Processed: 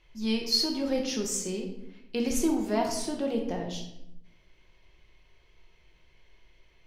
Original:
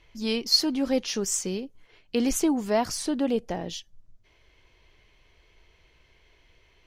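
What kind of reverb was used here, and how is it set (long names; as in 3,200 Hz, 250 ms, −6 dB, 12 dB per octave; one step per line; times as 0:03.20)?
rectangular room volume 250 cubic metres, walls mixed, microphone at 1 metre
level −5.5 dB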